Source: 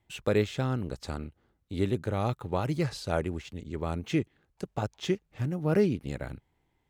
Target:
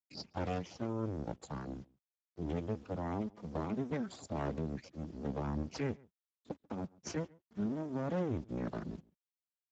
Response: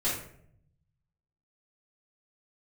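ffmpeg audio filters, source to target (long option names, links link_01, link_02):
-filter_complex "[0:a]acrossover=split=100|600|1800[link_01][link_02][link_03][link_04];[link_02]asubboost=boost=5.5:cutoff=130[link_05];[link_03]acompressor=threshold=-47dB:ratio=5[link_06];[link_01][link_05][link_06][link_04]amix=inputs=4:normalize=0,afftfilt=real='re*gte(hypot(re,im),0.0141)':imag='im*gte(hypot(re,im),0.0141)':win_size=1024:overlap=0.75,lowshelf=frequency=89:gain=-6,alimiter=level_in=1dB:limit=-24dB:level=0:latency=1:release=379,volume=-1dB,asetrate=53981,aresample=44100,atempo=0.816958,acrusher=bits=10:mix=0:aa=0.000001,asplit=2[link_07][link_08];[link_08]adelay=99.13,volume=-25dB,highshelf=frequency=4000:gain=-2.23[link_09];[link_07][link_09]amix=inputs=2:normalize=0,asetrate=31311,aresample=44100,aeval=exprs='abs(val(0))':channel_layout=same,volume=2dB" -ar 16000 -c:a libspeex -b:a 13k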